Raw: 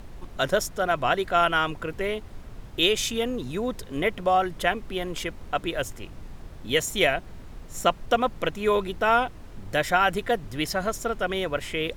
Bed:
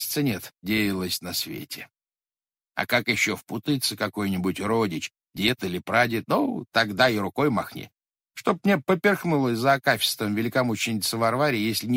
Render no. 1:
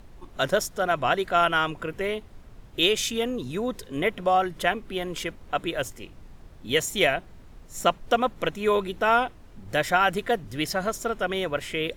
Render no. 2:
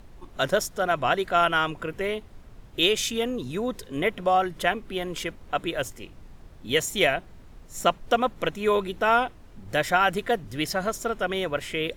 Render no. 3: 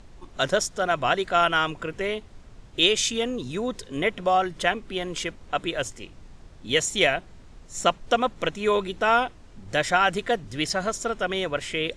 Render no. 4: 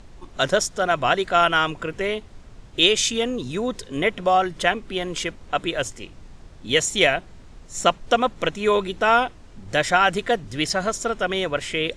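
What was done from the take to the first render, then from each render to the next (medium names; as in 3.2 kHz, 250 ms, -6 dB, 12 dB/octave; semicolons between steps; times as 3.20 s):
noise print and reduce 6 dB
no audible change
low-pass 8.4 kHz 24 dB/octave; treble shelf 4 kHz +6.5 dB
trim +3 dB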